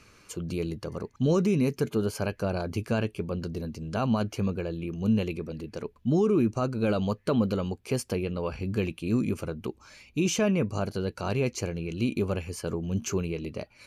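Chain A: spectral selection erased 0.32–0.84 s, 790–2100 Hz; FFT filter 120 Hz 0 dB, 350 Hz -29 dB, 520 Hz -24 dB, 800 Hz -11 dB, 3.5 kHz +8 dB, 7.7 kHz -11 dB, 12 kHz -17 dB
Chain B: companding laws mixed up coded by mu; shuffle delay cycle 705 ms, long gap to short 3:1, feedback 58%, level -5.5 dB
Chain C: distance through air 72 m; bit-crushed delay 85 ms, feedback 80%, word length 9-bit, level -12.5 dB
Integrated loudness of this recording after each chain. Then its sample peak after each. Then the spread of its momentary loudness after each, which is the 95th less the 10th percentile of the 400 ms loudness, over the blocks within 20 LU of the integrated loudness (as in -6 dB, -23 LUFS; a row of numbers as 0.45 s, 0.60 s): -35.5 LUFS, -26.5 LUFS, -29.0 LUFS; -18.0 dBFS, -10.5 dBFS, -13.5 dBFS; 9 LU, 6 LU, 10 LU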